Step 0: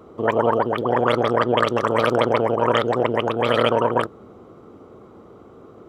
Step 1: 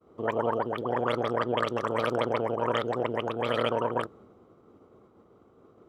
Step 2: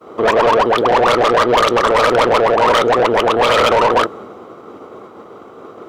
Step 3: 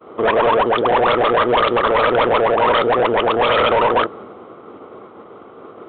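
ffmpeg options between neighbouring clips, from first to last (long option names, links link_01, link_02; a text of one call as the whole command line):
ffmpeg -i in.wav -af "agate=range=-33dB:threshold=-40dB:ratio=3:detection=peak,volume=-9dB" out.wav
ffmpeg -i in.wav -filter_complex "[0:a]asplit=2[link_01][link_02];[link_02]highpass=frequency=720:poles=1,volume=26dB,asoftclip=type=tanh:threshold=-11dB[link_03];[link_01][link_03]amix=inputs=2:normalize=0,lowpass=frequency=5000:poles=1,volume=-6dB,volume=7dB" out.wav
ffmpeg -i in.wav -af "aresample=8000,aresample=44100,volume=-2.5dB" out.wav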